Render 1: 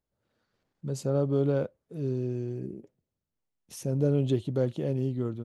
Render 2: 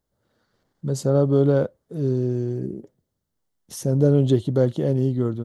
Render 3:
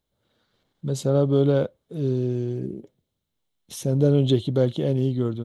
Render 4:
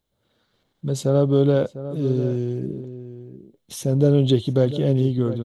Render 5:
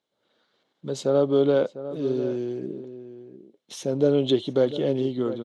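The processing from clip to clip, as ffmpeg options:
-af "equalizer=f=2500:w=4.9:g=-11.5,volume=2.51"
-af "superequalizer=12b=2.24:13b=2.82,volume=0.841"
-filter_complex "[0:a]asplit=2[s0][s1];[s1]adelay=699.7,volume=0.224,highshelf=f=4000:g=-15.7[s2];[s0][s2]amix=inputs=2:normalize=0,volume=1.26"
-af "highpass=290,lowpass=5900"

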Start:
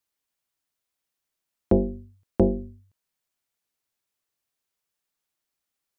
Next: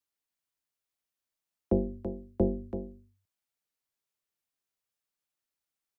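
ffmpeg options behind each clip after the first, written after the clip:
-filter_complex "[0:a]aecho=1:1:333:0.316,acrossover=split=190|260|950[s0][s1][s2][s3];[s3]alimiter=level_in=5.31:limit=0.0631:level=0:latency=1:release=140,volume=0.188[s4];[s0][s1][s2][s4]amix=inputs=4:normalize=0,volume=0.473"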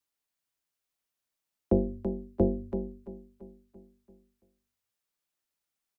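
-af "aecho=1:1:338|676|1014|1352|1690:0.178|0.096|0.0519|0.028|0.0151,volume=1.26"

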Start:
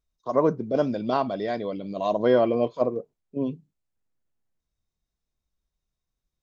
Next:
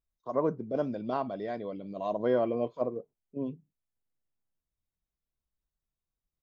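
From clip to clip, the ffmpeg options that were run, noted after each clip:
-af "equalizer=f=5000:t=o:w=1.7:g=-7.5,volume=0.447"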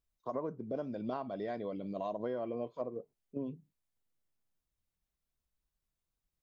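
-af "acompressor=threshold=0.0158:ratio=6,volume=1.19"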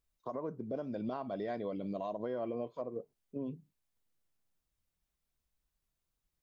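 -af "alimiter=level_in=2.11:limit=0.0631:level=0:latency=1:release=172,volume=0.473,volume=1.26"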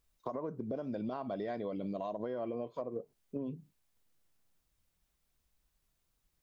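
-af "acompressor=threshold=0.00794:ratio=4,volume=2.11"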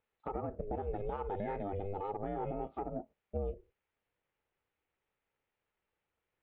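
-filter_complex "[0:a]asplit=2[s0][s1];[s1]highpass=f=720:p=1,volume=3.98,asoftclip=type=tanh:threshold=0.0668[s2];[s0][s2]amix=inputs=2:normalize=0,lowpass=f=1400:p=1,volume=0.501,highpass=f=120:w=0.5412,highpass=f=120:w=1.3066,equalizer=f=150:t=q:w=4:g=-7,equalizer=f=270:t=q:w=4:g=5,equalizer=f=500:t=q:w=4:g=-3,equalizer=f=850:t=q:w=4:g=-7,equalizer=f=1400:t=q:w=4:g=-6,lowpass=f=2800:w=0.5412,lowpass=f=2800:w=1.3066,aeval=exprs='val(0)*sin(2*PI*200*n/s)':c=same,volume=1.41"

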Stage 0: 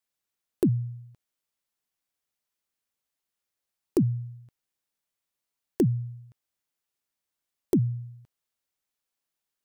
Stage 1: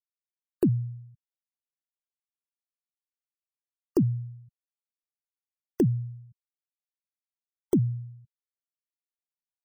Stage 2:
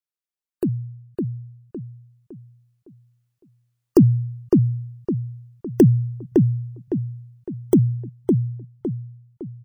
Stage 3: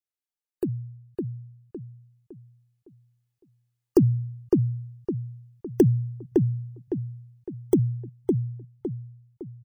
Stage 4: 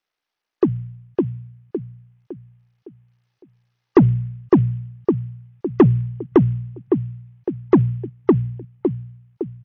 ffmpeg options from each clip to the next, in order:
-af "afftfilt=real='re*gte(hypot(re,im),0.00794)':imag='im*gte(hypot(re,im),0.00794)':win_size=1024:overlap=0.75"
-filter_complex "[0:a]dynaudnorm=f=240:g=17:m=3.76,asplit=2[s0][s1];[s1]adelay=559,lowpass=f=2000:p=1,volume=0.708,asplit=2[s2][s3];[s3]adelay=559,lowpass=f=2000:p=1,volume=0.41,asplit=2[s4][s5];[s5]adelay=559,lowpass=f=2000:p=1,volume=0.41,asplit=2[s6][s7];[s7]adelay=559,lowpass=f=2000:p=1,volume=0.41,asplit=2[s8][s9];[s9]adelay=559,lowpass=f=2000:p=1,volume=0.41[s10];[s0][s2][s4][s6][s8][s10]amix=inputs=6:normalize=0"
-af "equalizer=f=1300:w=4.6:g=-3,aecho=1:1:2.4:0.35,volume=0.562"
-filter_complex "[0:a]tremolo=f=60:d=0.4,asplit=2[s0][s1];[s1]highpass=f=720:p=1,volume=12.6,asoftclip=type=tanh:threshold=0.473[s2];[s0][s2]amix=inputs=2:normalize=0,lowpass=f=2000:p=1,volume=0.501,volume=1.88" -ar 48000 -c:a sbc -b:a 64k

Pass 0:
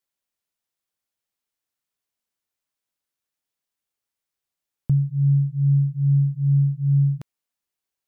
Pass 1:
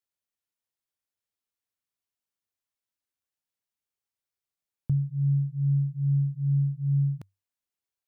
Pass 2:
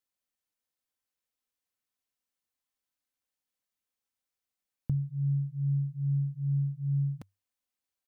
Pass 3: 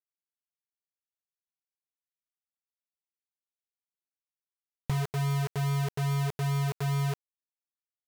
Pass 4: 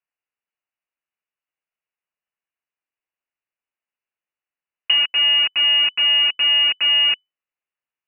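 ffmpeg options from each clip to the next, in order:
-af "equalizer=f=97:t=o:w=0.22:g=8.5,volume=0.473"
-af "aecho=1:1:3.9:0.43"
-filter_complex "[0:a]asplit=2[s0][s1];[s1]acompressor=threshold=0.01:ratio=6,volume=1.41[s2];[s0][s2]amix=inputs=2:normalize=0,acrusher=bits=4:mix=0:aa=0.000001,volume=0.75"
-af "lowpass=f=2600:t=q:w=0.5098,lowpass=f=2600:t=q:w=0.6013,lowpass=f=2600:t=q:w=0.9,lowpass=f=2600:t=q:w=2.563,afreqshift=-3000,aemphasis=mode=production:type=75kf,volume=2.37"

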